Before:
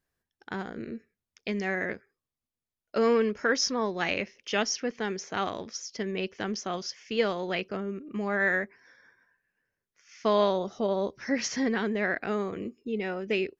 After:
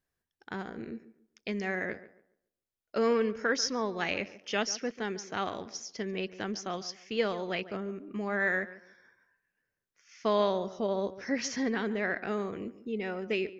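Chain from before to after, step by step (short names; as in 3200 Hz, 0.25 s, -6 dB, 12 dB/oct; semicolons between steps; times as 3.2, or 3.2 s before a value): tape echo 0.142 s, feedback 30%, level -14.5 dB, low-pass 1800 Hz; gain -3 dB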